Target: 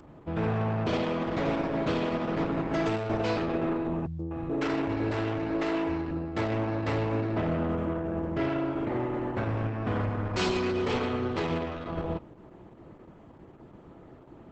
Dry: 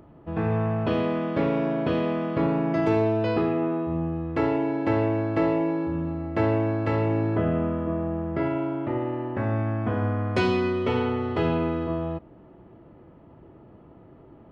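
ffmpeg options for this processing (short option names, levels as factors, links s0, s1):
-filter_complex "[0:a]aemphasis=mode=production:type=75fm,bandreject=f=2900:w=16,asoftclip=type=tanh:threshold=0.0562,asettb=1/sr,asplit=3[s0][s1][s2];[s0]atrim=end=4.064[s3];[s1]atrim=start=4.06:end=6.11,asetpts=PTS-STARTPTS,afade=t=in:d=0.004:c=qsin,afade=t=out:st=2.046:d=0.004:c=qsin,acrossover=split=170|650[s4][s5][s6];[s5]adelay=130[s7];[s6]adelay=250[s8];[s4][s7][s8]amix=inputs=3:normalize=0,atrim=end_sample=90405[s9];[s2]atrim=start=6.106[s10];[s3][s9]acrossfade=d=0.004:c1=hsin:c2=qsin[s11];[s11][s10]acrossfade=d=0.004:c1=qsin:c2=hsin,volume=1.26" -ar 48000 -c:a libopus -b:a 10k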